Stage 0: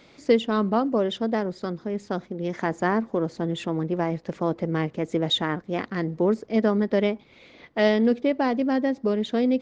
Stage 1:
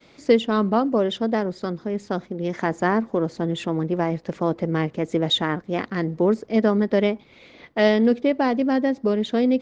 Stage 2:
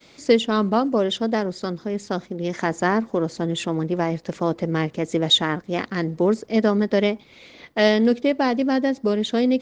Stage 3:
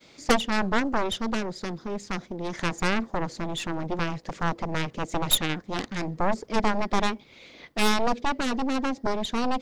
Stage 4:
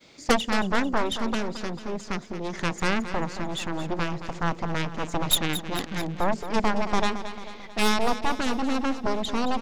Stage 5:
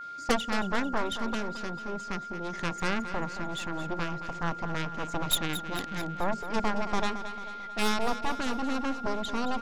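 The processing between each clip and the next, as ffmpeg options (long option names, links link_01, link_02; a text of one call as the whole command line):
ffmpeg -i in.wav -af "agate=range=-33dB:threshold=-51dB:ratio=3:detection=peak,volume=2.5dB" out.wav
ffmpeg -i in.wav -af "highshelf=frequency=4500:gain=12" out.wav
ffmpeg -i in.wav -af "aeval=exprs='0.668*(cos(1*acos(clip(val(0)/0.668,-1,1)))-cos(1*PI/2))+0.188*(cos(3*acos(clip(val(0)/0.668,-1,1)))-cos(3*PI/2))+0.133*(cos(4*acos(clip(val(0)/0.668,-1,1)))-cos(4*PI/2))+0.133*(cos(6*acos(clip(val(0)/0.668,-1,1)))-cos(6*PI/2))+0.0841*(cos(7*acos(clip(val(0)/0.668,-1,1)))-cos(7*PI/2))':channel_layout=same" out.wav
ffmpeg -i in.wav -af "aecho=1:1:222|444|666|888|1110|1332:0.266|0.144|0.0776|0.0419|0.0226|0.0122" out.wav
ffmpeg -i in.wav -af "aeval=exprs='val(0)+0.0224*sin(2*PI*1400*n/s)':channel_layout=same,volume=-5dB" out.wav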